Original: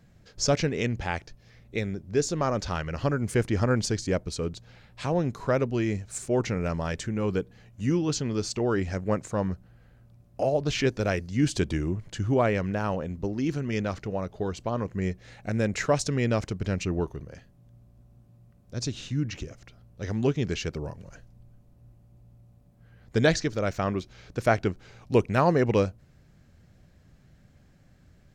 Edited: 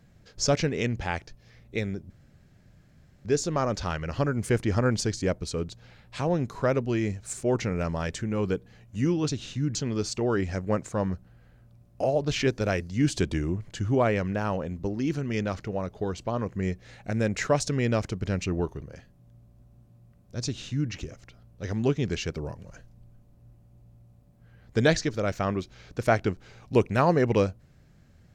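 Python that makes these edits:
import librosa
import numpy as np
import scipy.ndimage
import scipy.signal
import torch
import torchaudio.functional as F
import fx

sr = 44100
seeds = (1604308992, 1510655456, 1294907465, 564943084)

y = fx.edit(x, sr, fx.insert_room_tone(at_s=2.1, length_s=1.15),
    fx.duplicate(start_s=18.84, length_s=0.46, to_s=8.14), tone=tone)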